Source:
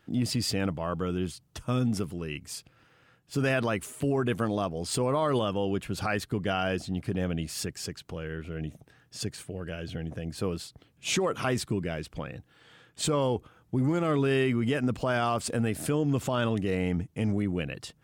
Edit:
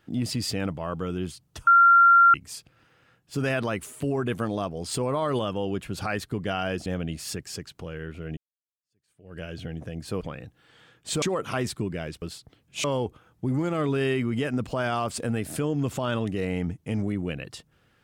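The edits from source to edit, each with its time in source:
1.67–2.34 bleep 1380 Hz -12 dBFS
6.86–7.16 cut
8.67–9.68 fade in exponential
10.51–11.13 swap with 12.13–13.14

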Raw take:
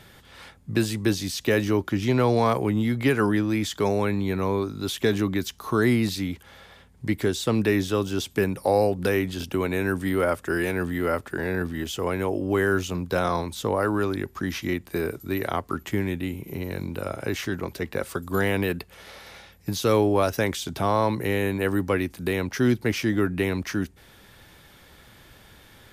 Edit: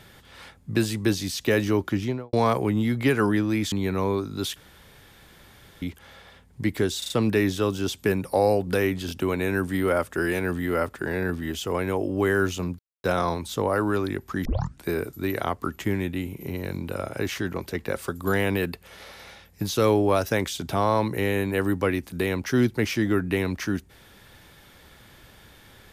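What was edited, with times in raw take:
1.92–2.33 studio fade out
3.72–4.16 cut
5–6.26 room tone
7.42 stutter 0.04 s, 4 plays
13.11 insert silence 0.25 s
14.52 tape start 0.40 s

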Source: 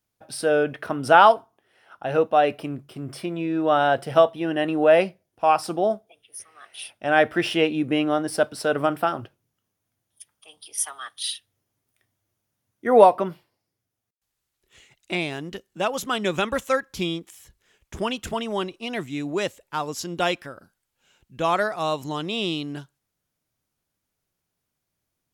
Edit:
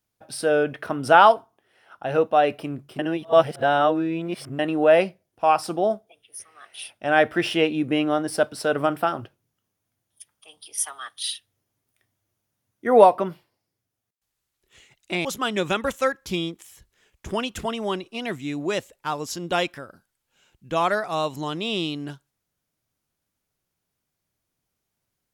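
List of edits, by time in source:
2.99–4.59 reverse
15.25–15.93 cut

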